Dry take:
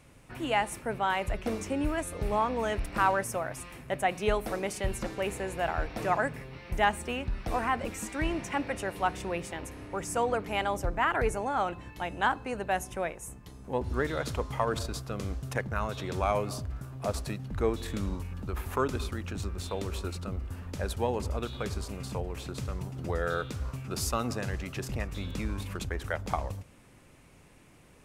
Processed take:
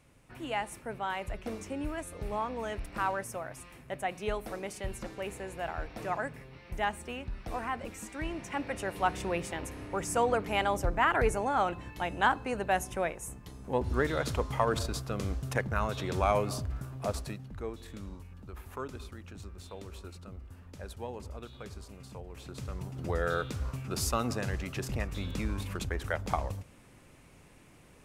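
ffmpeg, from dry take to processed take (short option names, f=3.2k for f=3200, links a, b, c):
-af "volume=11.5dB,afade=t=in:st=8.35:d=0.87:silence=0.446684,afade=t=out:st=16.81:d=0.82:silence=0.266073,afade=t=in:st=22.24:d=0.94:silence=0.298538"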